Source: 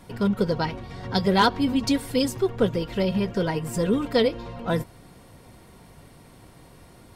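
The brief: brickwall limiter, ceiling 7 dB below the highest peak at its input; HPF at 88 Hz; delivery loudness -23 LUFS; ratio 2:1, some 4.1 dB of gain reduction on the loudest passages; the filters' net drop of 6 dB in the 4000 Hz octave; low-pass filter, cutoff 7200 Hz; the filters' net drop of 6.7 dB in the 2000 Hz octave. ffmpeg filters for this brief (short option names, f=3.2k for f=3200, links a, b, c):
-af "highpass=88,lowpass=7.2k,equalizer=f=2k:t=o:g=-8.5,equalizer=f=4k:t=o:g=-4.5,acompressor=threshold=-24dB:ratio=2,volume=7.5dB,alimiter=limit=-13dB:level=0:latency=1"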